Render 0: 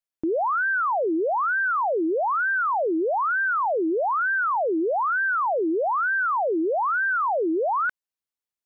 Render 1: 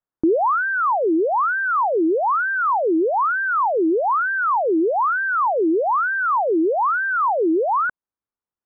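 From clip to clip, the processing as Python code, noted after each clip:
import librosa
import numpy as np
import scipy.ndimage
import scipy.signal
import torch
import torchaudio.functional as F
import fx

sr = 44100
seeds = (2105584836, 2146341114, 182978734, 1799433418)

y = scipy.signal.sosfilt(scipy.signal.butter(4, 1400.0, 'lowpass', fs=sr, output='sos'), x)
y = fx.peak_eq(y, sr, hz=630.0, db=-4.5, octaves=0.68)
y = fx.rider(y, sr, range_db=10, speed_s=0.5)
y = F.gain(torch.from_numpy(y), 6.5).numpy()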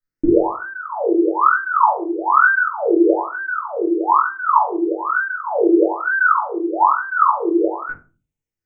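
y = fx.phaser_stages(x, sr, stages=6, low_hz=450.0, high_hz=1300.0, hz=0.4, feedback_pct=35)
y = fx.doubler(y, sr, ms=21.0, db=-3.5)
y = fx.room_shoebox(y, sr, seeds[0], volume_m3=150.0, walls='furnished', distance_m=2.7)
y = F.gain(torch.from_numpy(y), -2.0).numpy()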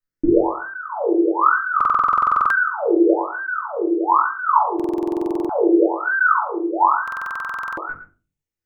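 y = x + 10.0 ** (-12.0 / 20.0) * np.pad(x, (int(112 * sr / 1000.0), 0))[:len(x)]
y = fx.buffer_glitch(y, sr, at_s=(1.76, 4.75, 7.03), block=2048, repeats=15)
y = F.gain(torch.from_numpy(y), -1.5).numpy()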